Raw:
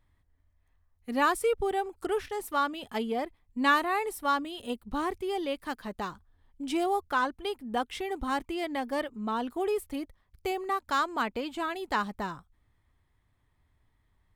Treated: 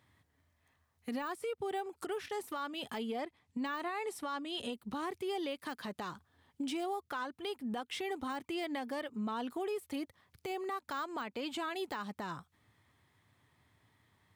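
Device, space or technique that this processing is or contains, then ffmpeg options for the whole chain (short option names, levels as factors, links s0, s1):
broadcast voice chain: -filter_complex "[0:a]asettb=1/sr,asplit=3[s0][s1][s2];[s0]atrim=end=3.214[s3];[s1]atrim=start=3.21:end=4.73,asetpts=PTS-STARTPTS,afade=t=in:d=0.004:c=qsin,afade=t=out:st=1.516:d=0.004:c=qsin,lowpass=9300[s4];[s2]atrim=start=4.726[s5];[s3][s4]acrossfade=d=0.004:c1=hsin:c2=qsin[s6];[s6][s5]acrossfade=d=0.004:c1=qsin:c2=hsin,highpass=f=100:w=0.5412,highpass=f=100:w=1.3066,deesser=0.95,acompressor=threshold=0.01:ratio=5,equalizer=f=4100:t=o:w=2.6:g=3.5,alimiter=level_in=3.55:limit=0.0631:level=0:latency=1:release=73,volume=0.282,volume=1.78"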